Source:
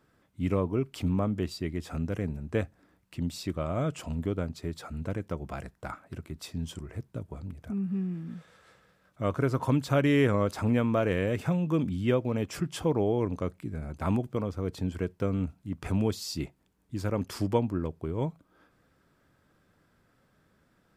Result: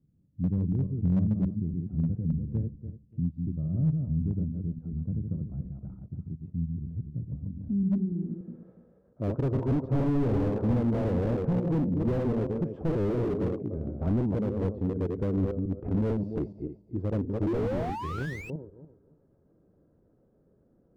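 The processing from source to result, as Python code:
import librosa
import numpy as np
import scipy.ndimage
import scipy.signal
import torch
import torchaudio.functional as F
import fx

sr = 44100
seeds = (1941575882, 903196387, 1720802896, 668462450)

y = fx.reverse_delay_fb(x, sr, ms=145, feedback_pct=44, wet_db=-4.0)
y = fx.filter_sweep_lowpass(y, sr, from_hz=170.0, to_hz=460.0, start_s=7.24, end_s=8.6, q=1.7)
y = fx.spec_paint(y, sr, seeds[0], shape='rise', start_s=17.46, length_s=1.04, low_hz=310.0, high_hz=2700.0, level_db=-22.0)
y = fx.slew_limit(y, sr, full_power_hz=17.0)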